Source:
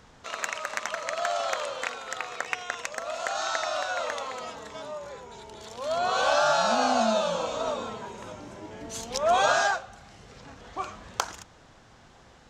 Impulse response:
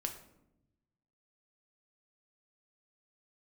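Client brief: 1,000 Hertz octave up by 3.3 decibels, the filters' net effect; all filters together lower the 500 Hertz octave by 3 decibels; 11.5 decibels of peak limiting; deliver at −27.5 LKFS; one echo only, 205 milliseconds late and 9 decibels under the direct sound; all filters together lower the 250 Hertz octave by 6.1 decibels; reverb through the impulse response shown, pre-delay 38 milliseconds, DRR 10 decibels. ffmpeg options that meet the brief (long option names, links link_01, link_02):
-filter_complex "[0:a]equalizer=frequency=250:width_type=o:gain=-5.5,equalizer=frequency=500:width_type=o:gain=-8,equalizer=frequency=1000:width_type=o:gain=8,alimiter=limit=-16.5dB:level=0:latency=1,aecho=1:1:205:0.355,asplit=2[link_01][link_02];[1:a]atrim=start_sample=2205,adelay=38[link_03];[link_02][link_03]afir=irnorm=-1:irlink=0,volume=-10dB[link_04];[link_01][link_04]amix=inputs=2:normalize=0,volume=1dB"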